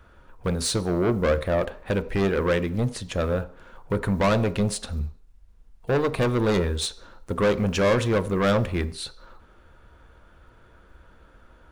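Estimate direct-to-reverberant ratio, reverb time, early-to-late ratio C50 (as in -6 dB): 11.0 dB, 0.55 s, 17.0 dB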